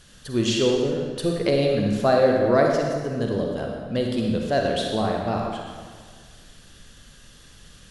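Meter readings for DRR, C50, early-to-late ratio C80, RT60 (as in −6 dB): 0.5 dB, 1.5 dB, 3.0 dB, 1.7 s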